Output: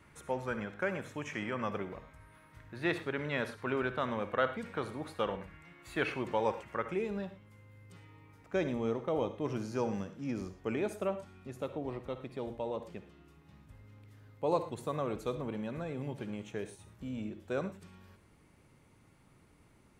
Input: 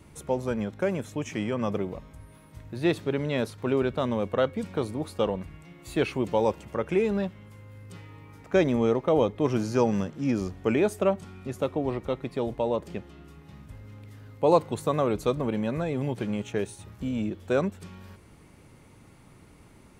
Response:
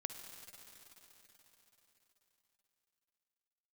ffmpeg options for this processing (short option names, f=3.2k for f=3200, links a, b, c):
-filter_complex "[0:a]asetnsamples=n=441:p=0,asendcmd='6.86 equalizer g 2',equalizer=f=1.6k:t=o:w=1.6:g=13[a];[1:a]atrim=start_sample=2205,afade=t=out:st=0.17:d=0.01,atrim=end_sample=7938[b];[a][b]afir=irnorm=-1:irlink=0,volume=-7.5dB"